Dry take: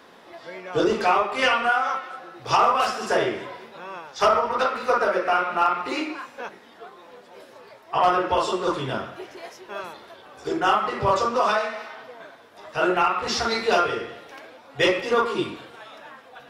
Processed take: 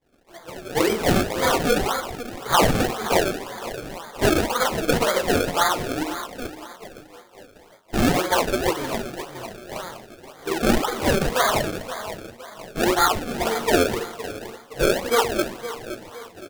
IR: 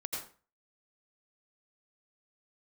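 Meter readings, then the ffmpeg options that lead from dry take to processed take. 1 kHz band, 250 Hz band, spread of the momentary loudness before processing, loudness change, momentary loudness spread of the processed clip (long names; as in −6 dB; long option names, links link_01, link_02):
−2.5 dB, +6.0 dB, 18 LU, 0.0 dB, 16 LU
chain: -filter_complex "[0:a]asplit=2[link_01][link_02];[link_02]adelay=516,lowpass=frequency=1400:poles=1,volume=-12dB,asplit=2[link_03][link_04];[link_04]adelay=516,lowpass=frequency=1400:poles=1,volume=0.48,asplit=2[link_05][link_06];[link_06]adelay=516,lowpass=frequency=1400:poles=1,volume=0.48,asplit=2[link_07][link_08];[link_08]adelay=516,lowpass=frequency=1400:poles=1,volume=0.48,asplit=2[link_09][link_10];[link_10]adelay=516,lowpass=frequency=1400:poles=1,volume=0.48[link_11];[link_03][link_05][link_07][link_09][link_11]amix=inputs=5:normalize=0[link_12];[link_01][link_12]amix=inputs=2:normalize=0,acrossover=split=2500[link_13][link_14];[link_14]acompressor=threshold=-38dB:ratio=4:attack=1:release=60[link_15];[link_13][link_15]amix=inputs=2:normalize=0,acrusher=samples=31:mix=1:aa=0.000001:lfo=1:lforange=31:lforate=1.9,equalizer=frequency=79:width=0.41:gain=-3,agate=range=-33dB:threshold=-40dB:ratio=3:detection=peak,flanger=delay=2.1:depth=9.7:regen=-48:speed=0.46:shape=triangular,volume=5.5dB"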